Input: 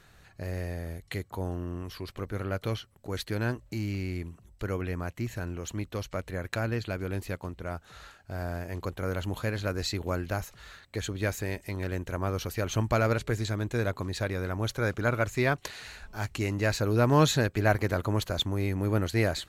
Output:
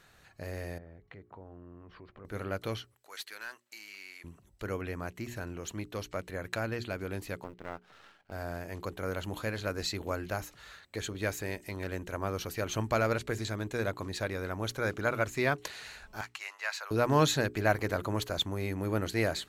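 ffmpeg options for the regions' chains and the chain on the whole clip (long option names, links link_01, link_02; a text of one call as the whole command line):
ffmpeg -i in.wav -filter_complex "[0:a]asettb=1/sr,asplit=3[link_01][link_02][link_03];[link_01]atrim=end=0.784[link_04];[link_02]atrim=start=0.78:end=2.25,asetpts=PTS-STARTPTS,afade=type=in:duration=0.004:curve=qsin,afade=type=out:start_time=1.466:duration=0.004:curve=qsin,lowpass=1600,acompressor=threshold=-45dB:ratio=3:attack=3.2:release=140:knee=1:detection=peak[link_05];[link_03]atrim=start=2.246[link_06];[link_04][link_05]acrossfade=duration=0.004:curve1=hsin:curve2=qsin[link_07];[link_07][link_06]acrossfade=duration=0.004:curve1=qsin:curve2=hsin,asettb=1/sr,asplit=3[link_08][link_09][link_10];[link_08]atrim=end=2.944[link_11];[link_09]atrim=start=2.94:end=4.24,asetpts=PTS-STARTPTS,afade=type=in:duration=0.004:curve=qsin,afade=type=out:start_time=1.296:duration=0.004:curve=qsin,highpass=1200,aeval=exprs='(tanh(35.5*val(0)+0.15)-tanh(0.15))/35.5':channel_layout=same[link_12];[link_10]atrim=start=4.236[link_13];[link_11][link_12]acrossfade=duration=0.004:curve1=hsin:curve2=qsin[link_14];[link_14][link_13]acrossfade=duration=0.004:curve1=qsin:curve2=hsin,asettb=1/sr,asplit=3[link_15][link_16][link_17];[link_15]atrim=end=7.444[link_18];[link_16]atrim=start=7.44:end=8.32,asetpts=PTS-STARTPTS,afade=type=in:duration=0.004:curve=qsin,afade=type=out:start_time=0.876:duration=0.004:curve=qsin,highpass=130,lowpass=3100,aeval=exprs='max(val(0),0)':channel_layout=same,acrusher=bits=9:mode=log:mix=0:aa=0.000001[link_19];[link_17]atrim=start=8.316[link_20];[link_18][link_19]acrossfade=duration=0.004:curve1=hsin:curve2=qsin[link_21];[link_21][link_20]acrossfade=duration=0.004:curve1=qsin:curve2=hsin,asettb=1/sr,asplit=3[link_22][link_23][link_24];[link_22]atrim=end=16.214[link_25];[link_23]atrim=start=16.21:end=16.91,asetpts=PTS-STARTPTS,afade=type=in:duration=0.004:curve=qsin,afade=type=out:start_time=0.696:duration=0.004:curve=qsin,highpass=frequency=890:width=0.5412,highpass=frequency=890:width=1.3066,highshelf=frequency=6000:gain=-9.5[link_26];[link_24]atrim=start=16.906[link_27];[link_25][link_26]acrossfade=duration=0.004:curve1=hsin:curve2=qsin[link_28];[link_28][link_27]acrossfade=duration=0.004:curve1=qsin:curve2=hsin,lowshelf=frequency=130:gain=-8,bandreject=frequency=60:width_type=h:width=6,bandreject=frequency=120:width_type=h:width=6,bandreject=frequency=180:width_type=h:width=6,bandreject=frequency=240:width_type=h:width=6,bandreject=frequency=300:width_type=h:width=6,bandreject=frequency=360:width_type=h:width=6,bandreject=frequency=420:width_type=h:width=6,volume=-1.5dB" out.wav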